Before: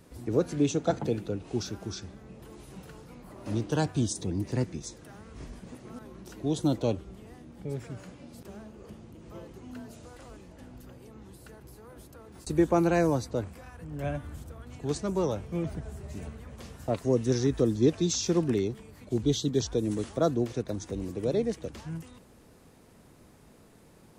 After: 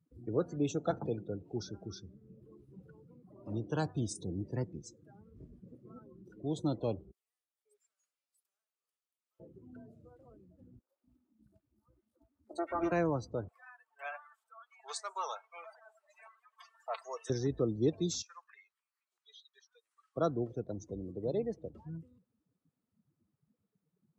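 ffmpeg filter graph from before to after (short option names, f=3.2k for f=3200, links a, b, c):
-filter_complex "[0:a]asettb=1/sr,asplit=3[a][b][c];[a]atrim=end=7.114[d];[b]atrim=start=7.11:end=9.4,asetpts=PTS-STARTPTS,afade=t=in:d=0.004:c=qsin,afade=t=out:st=2.286:d=0.004:c=qsin,highpass=480,aderivative,acontrast=48[e];[c]atrim=start=9.396[f];[d][e]acrossfade=d=0.004:c1=hsin:c2=qsin[g];[g][f]acrossfade=d=0.004:c1=qsin:c2=hsin,asettb=1/sr,asplit=3[h][i][j];[h]atrim=end=10.794[k];[i]atrim=start=10.79:end=12.92,asetpts=PTS-STARTPTS,afade=t=in:d=0.004:c=qsin,afade=t=out:st=2.126:d=0.004:c=qsin,aecho=1:1:3.3:0.7,atrim=end_sample=93933,aeval=exprs='max(val(0),0)':c=same,acrossover=split=380|1700[l][m][n];[n]adelay=90[o];[l]adelay=240[p];[p][m][o]amix=inputs=3:normalize=0,atrim=end_sample=93933[q];[j]atrim=start=12.916[r];[k][q]acrossfade=d=0.004:c1=hsin:c2=qsin[s];[s][r]acrossfade=d=0.004:c1=qsin:c2=hsin,asettb=1/sr,asplit=3[t][u][v];[t]atrim=end=13.484[w];[u]atrim=start=13.48:end=17.3,asetpts=PTS-STARTPTS,afade=t=in:d=0.004:c=qsin,afade=t=out:st=3.816:d=0.004:c=qsin,highpass=f=810:w=0.5412,highpass=f=810:w=1.3066,aecho=1:1:4.5:0.35,atrim=end_sample=168462,acontrast=49[x];[v]atrim=start=17.296[y];[w][x]acrossfade=d=0.004:c1=hsin:c2=qsin[z];[z][y]acrossfade=d=0.004:c1=qsin:c2=hsin,asettb=1/sr,asplit=3[aa][ab][ac];[aa]atrim=end=18.224[ad];[ab]atrim=start=18.22:end=20.16,asetpts=PTS-STARTPTS,afade=t=in:d=0.004:c=qsin,afade=t=out:st=1.936:d=0.004:c=qsin,highpass=f=1.1k:w=0.5412,highpass=f=1.1k:w=1.3066,bandreject=f=3.5k:w=17,acrossover=split=2600[ae][af];[af]acompressor=threshold=-49dB:ratio=4:attack=1:release=60[ag];[ae][ag]amix=inputs=2:normalize=0[ah];[ac]atrim=start=20.156[ai];[ad][ah]acrossfade=d=0.004:c1=hsin:c2=qsin[aj];[aj][ai]acrossfade=d=0.004:c1=qsin:c2=hsin,highpass=79,afftdn=nr=29:nf=-41,equalizer=f=250:t=o:w=0.33:g=-4,equalizer=f=1.25k:t=o:w=0.33:g=6,equalizer=f=6.3k:t=o:w=0.33:g=-3,volume=-6dB"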